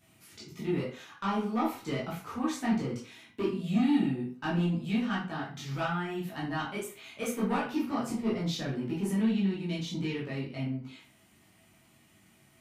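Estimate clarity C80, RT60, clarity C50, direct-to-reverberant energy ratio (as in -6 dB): 10.0 dB, 0.45 s, 5.0 dB, -8.0 dB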